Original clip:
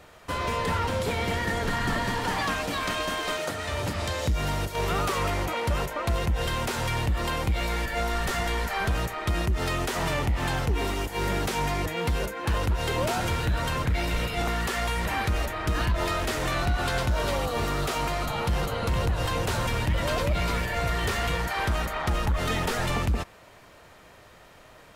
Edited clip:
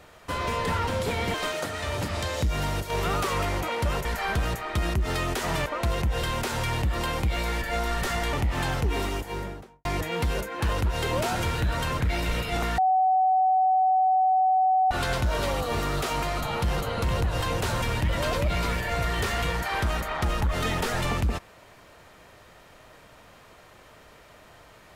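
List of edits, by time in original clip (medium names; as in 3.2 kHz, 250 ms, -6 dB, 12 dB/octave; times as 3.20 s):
1.34–3.19 s: delete
8.57–10.18 s: move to 5.90 s
10.88–11.70 s: studio fade out
14.63–16.76 s: bleep 752 Hz -18 dBFS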